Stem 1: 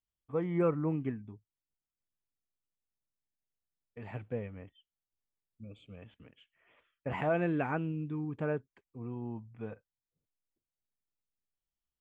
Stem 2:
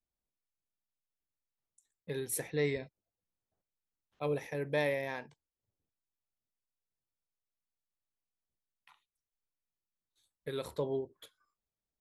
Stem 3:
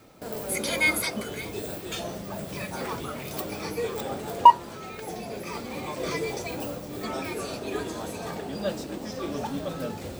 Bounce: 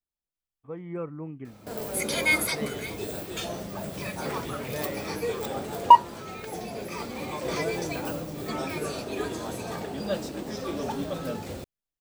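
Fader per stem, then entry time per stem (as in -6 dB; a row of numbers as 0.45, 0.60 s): -5.5, -5.0, 0.0 dB; 0.35, 0.00, 1.45 s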